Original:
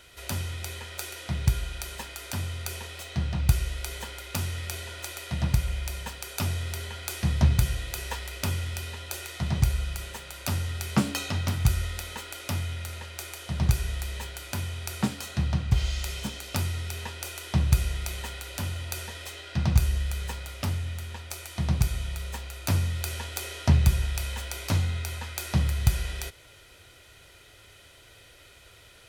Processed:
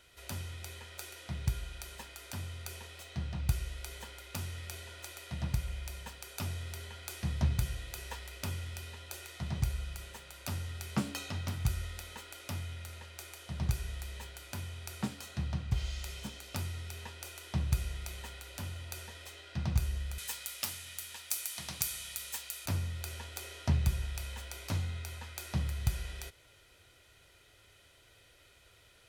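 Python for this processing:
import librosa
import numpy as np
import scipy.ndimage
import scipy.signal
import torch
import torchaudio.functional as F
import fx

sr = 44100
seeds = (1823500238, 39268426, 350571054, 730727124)

y = fx.tilt_eq(x, sr, slope=4.5, at=(20.18, 22.66))
y = y * librosa.db_to_amplitude(-9.0)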